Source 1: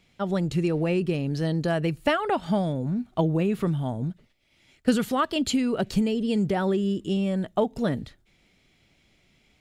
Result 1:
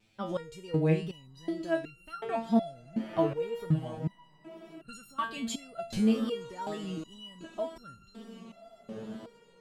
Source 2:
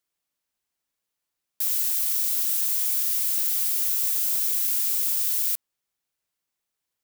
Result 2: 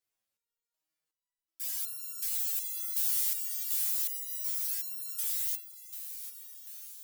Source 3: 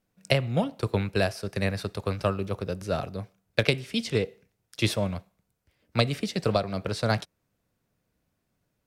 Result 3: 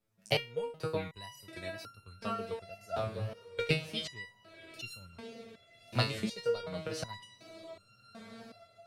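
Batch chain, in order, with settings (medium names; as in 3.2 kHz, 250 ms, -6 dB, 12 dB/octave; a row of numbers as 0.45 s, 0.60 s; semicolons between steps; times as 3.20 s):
echo that smears into a reverb 1176 ms, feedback 54%, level -14 dB; wow and flutter 130 cents; resonator arpeggio 2.7 Hz 110–1400 Hz; trim +6 dB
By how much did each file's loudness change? -7.0 LU, -9.5 LU, -8.5 LU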